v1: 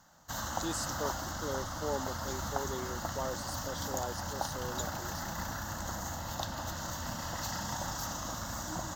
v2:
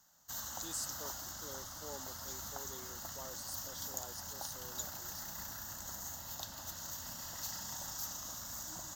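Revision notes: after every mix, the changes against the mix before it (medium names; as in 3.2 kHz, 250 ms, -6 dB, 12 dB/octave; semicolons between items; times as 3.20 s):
master: add pre-emphasis filter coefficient 0.8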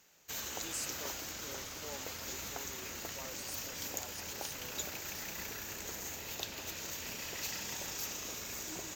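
background: remove static phaser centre 1 kHz, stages 4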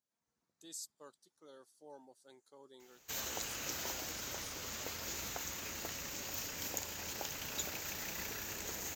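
speech -5.5 dB; background: entry +2.80 s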